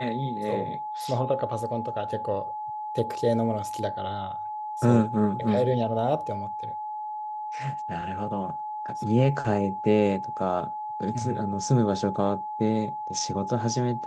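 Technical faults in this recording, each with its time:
whistle 850 Hz −31 dBFS

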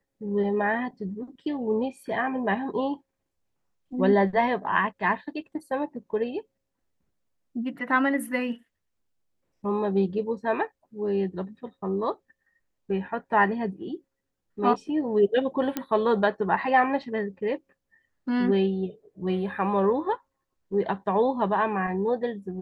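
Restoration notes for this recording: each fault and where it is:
0:15.77: click −13 dBFS

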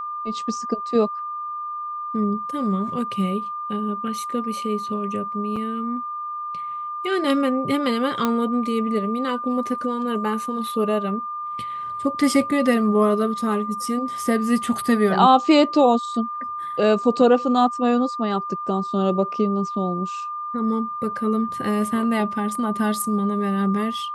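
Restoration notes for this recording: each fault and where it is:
whistle 1,200 Hz −27 dBFS
0:05.56–0:05.57: drop-out 5 ms
0:08.25: click −8 dBFS

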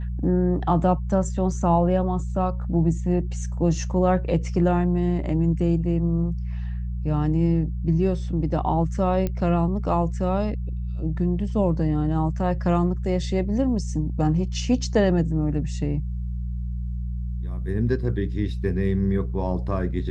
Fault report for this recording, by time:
mains hum 60 Hz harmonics 3 −28 dBFS
0:09.27: click −14 dBFS

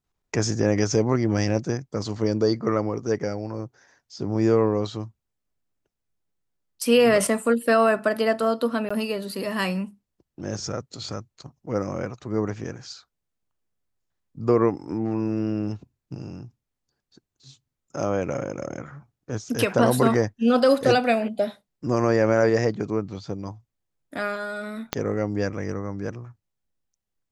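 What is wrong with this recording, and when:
0:08.89–0:08.90: drop-out 15 ms
0:24.93: click −8 dBFS

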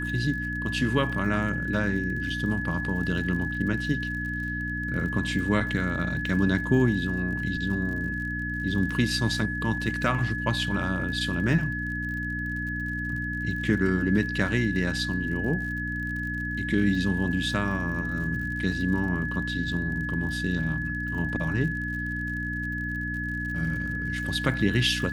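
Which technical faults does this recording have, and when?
surface crackle 53 per second −36 dBFS
mains hum 60 Hz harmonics 5 −33 dBFS
whistle 1,700 Hz −31 dBFS

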